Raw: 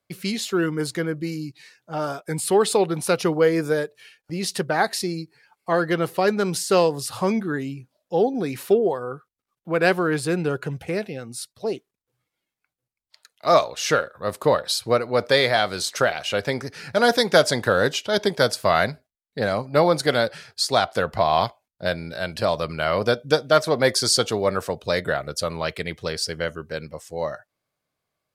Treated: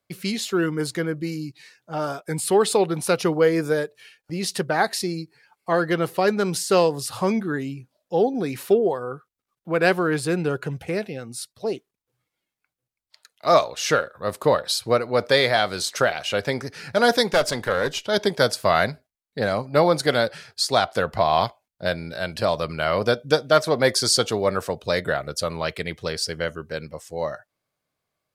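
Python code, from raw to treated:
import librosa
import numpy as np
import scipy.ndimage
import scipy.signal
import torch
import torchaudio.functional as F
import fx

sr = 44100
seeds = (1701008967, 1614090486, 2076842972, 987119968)

y = fx.tube_stage(x, sr, drive_db=11.0, bias=0.55, at=(17.31, 18.08))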